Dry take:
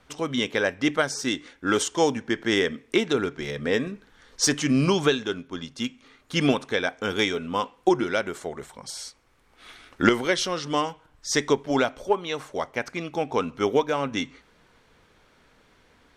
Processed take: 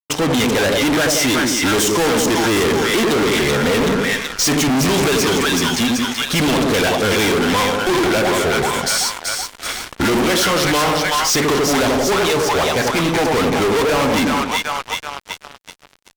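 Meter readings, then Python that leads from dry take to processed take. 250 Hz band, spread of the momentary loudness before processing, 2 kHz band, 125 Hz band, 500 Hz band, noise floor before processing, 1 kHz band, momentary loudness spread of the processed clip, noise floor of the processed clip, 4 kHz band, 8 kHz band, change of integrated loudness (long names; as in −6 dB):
+9.0 dB, 11 LU, +10.5 dB, +10.0 dB, +8.5 dB, −61 dBFS, +10.5 dB, 5 LU, −45 dBFS, +11.5 dB, +13.0 dB, +9.5 dB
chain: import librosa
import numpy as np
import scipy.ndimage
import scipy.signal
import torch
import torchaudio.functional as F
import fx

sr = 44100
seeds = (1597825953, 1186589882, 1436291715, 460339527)

y = fx.echo_split(x, sr, split_hz=780.0, low_ms=88, high_ms=379, feedback_pct=52, wet_db=-7)
y = fx.fuzz(y, sr, gain_db=39.0, gate_db=-48.0)
y = y * 10.0 ** (-1.5 / 20.0)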